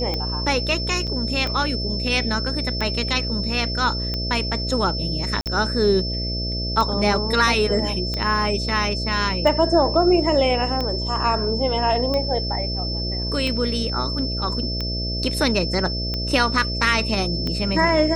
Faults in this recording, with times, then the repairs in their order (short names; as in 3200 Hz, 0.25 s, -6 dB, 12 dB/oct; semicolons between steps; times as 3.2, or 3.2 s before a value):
buzz 60 Hz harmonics 11 -27 dBFS
tick 45 rpm -13 dBFS
tone 5300 Hz -27 dBFS
1.07–1.08 gap 6.5 ms
5.41–5.46 gap 48 ms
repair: de-click; de-hum 60 Hz, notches 11; notch 5300 Hz, Q 30; interpolate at 1.07, 6.5 ms; interpolate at 5.41, 48 ms